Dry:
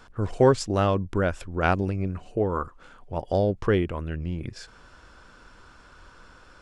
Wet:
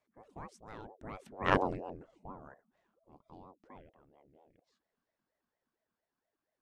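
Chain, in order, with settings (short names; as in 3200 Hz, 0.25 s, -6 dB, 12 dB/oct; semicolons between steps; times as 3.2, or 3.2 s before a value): Doppler pass-by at 1.57, 36 m/s, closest 2.2 m; ring modulator with a swept carrier 430 Hz, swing 55%, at 4.3 Hz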